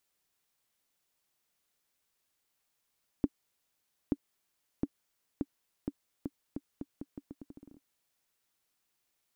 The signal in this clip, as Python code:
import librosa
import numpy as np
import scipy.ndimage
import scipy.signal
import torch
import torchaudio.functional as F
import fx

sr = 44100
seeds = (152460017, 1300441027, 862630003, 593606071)

y = fx.bouncing_ball(sr, first_gap_s=0.88, ratio=0.81, hz=283.0, decay_ms=45.0, level_db=-15.0)